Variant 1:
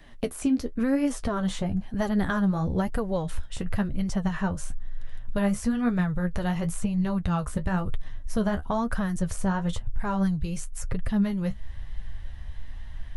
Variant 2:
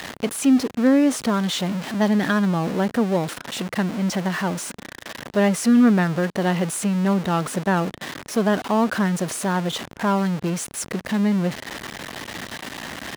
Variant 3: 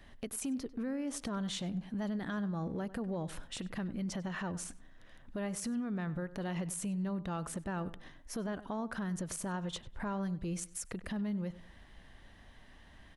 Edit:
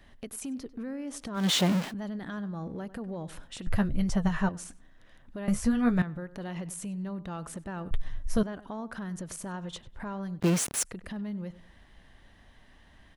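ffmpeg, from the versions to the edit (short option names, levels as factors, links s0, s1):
-filter_complex "[1:a]asplit=2[s0][s1];[0:a]asplit=3[s2][s3][s4];[2:a]asplit=6[s5][s6][s7][s8][s9][s10];[s5]atrim=end=1.5[s11];[s0]atrim=start=1.34:end=1.94[s12];[s6]atrim=start=1.78:end=3.672[s13];[s2]atrim=start=3.668:end=4.492[s14];[s7]atrim=start=4.488:end=5.482[s15];[s3]atrim=start=5.478:end=6.022[s16];[s8]atrim=start=6.018:end=7.912[s17];[s4]atrim=start=7.908:end=8.432[s18];[s9]atrim=start=8.428:end=10.402[s19];[s1]atrim=start=10.398:end=10.832[s20];[s10]atrim=start=10.828[s21];[s11][s12]acrossfade=d=0.16:c1=tri:c2=tri[s22];[s22][s13]acrossfade=d=0.16:c1=tri:c2=tri[s23];[s23][s14]acrossfade=d=0.004:c1=hsin:c2=hsin[s24];[s24][s15]acrossfade=d=0.004:c1=hsin:c2=hsin[s25];[s25][s16]acrossfade=d=0.004:c1=hsin:c2=hsin[s26];[s26][s17]acrossfade=d=0.004:c1=hsin:c2=hsin[s27];[s27][s18]acrossfade=d=0.004:c1=hsin:c2=hsin[s28];[s28][s19]acrossfade=d=0.004:c1=hsin:c2=hsin[s29];[s29][s20]acrossfade=d=0.004:c1=hsin:c2=hsin[s30];[s30][s21]acrossfade=d=0.004:c1=hsin:c2=hsin"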